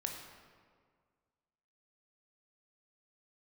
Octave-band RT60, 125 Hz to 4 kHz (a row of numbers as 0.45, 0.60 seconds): 2.0, 1.9, 1.9, 1.8, 1.5, 1.1 seconds